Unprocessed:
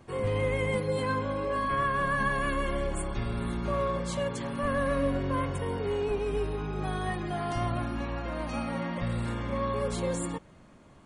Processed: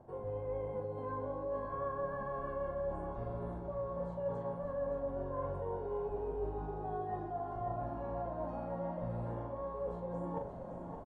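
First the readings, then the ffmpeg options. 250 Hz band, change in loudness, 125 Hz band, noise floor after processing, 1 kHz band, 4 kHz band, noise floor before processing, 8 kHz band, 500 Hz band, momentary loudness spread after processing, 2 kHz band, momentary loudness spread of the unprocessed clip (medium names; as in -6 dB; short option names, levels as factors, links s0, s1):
-12.0 dB, -9.0 dB, -10.5 dB, -44 dBFS, -8.5 dB, under -30 dB, -54 dBFS, under -35 dB, -6.0 dB, 3 LU, -21.5 dB, 6 LU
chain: -filter_complex "[0:a]bandreject=f=1200:w=7.1,acrossover=split=3600[s0][s1];[s1]acompressor=threshold=0.002:ratio=4:attack=1:release=60[s2];[s0][s2]amix=inputs=2:normalize=0,firequalizer=gain_entry='entry(310,0);entry(670,10);entry(2200,-19)':delay=0.05:min_phase=1,areverse,acompressor=threshold=0.00794:ratio=10,areverse,asplit=2[s3][s4];[s4]adelay=41,volume=0.531[s5];[s3][s5]amix=inputs=2:normalize=0,asplit=2[s6][s7];[s7]aecho=0:1:570:0.376[s8];[s6][s8]amix=inputs=2:normalize=0,volume=1.58"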